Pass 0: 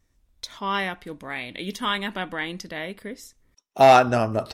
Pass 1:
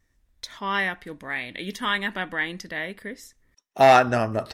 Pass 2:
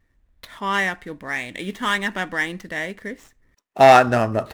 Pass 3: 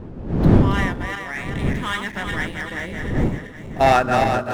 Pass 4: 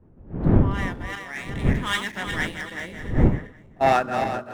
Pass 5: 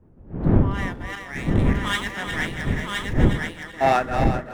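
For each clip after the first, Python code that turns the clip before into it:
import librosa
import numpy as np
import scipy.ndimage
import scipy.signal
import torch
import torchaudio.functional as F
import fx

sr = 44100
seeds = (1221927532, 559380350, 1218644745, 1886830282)

y1 = fx.peak_eq(x, sr, hz=1800.0, db=8.0, octaves=0.37)
y1 = y1 * librosa.db_to_amplitude(-1.5)
y2 = scipy.signal.medfilt(y1, 9)
y2 = y2 * librosa.db_to_amplitude(4.0)
y3 = fx.reverse_delay_fb(y2, sr, ms=193, feedback_pct=68, wet_db=-4.0)
y3 = fx.dmg_wind(y3, sr, seeds[0], corner_hz=220.0, level_db=-18.0)
y3 = y3 * librosa.db_to_amplitude(-4.5)
y4 = fx.rider(y3, sr, range_db=4, speed_s=0.5)
y4 = fx.band_widen(y4, sr, depth_pct=100)
y4 = y4 * librosa.db_to_amplitude(-4.5)
y5 = y4 + 10.0 ** (-3.5 / 20.0) * np.pad(y4, (int(1019 * sr / 1000.0), 0))[:len(y4)]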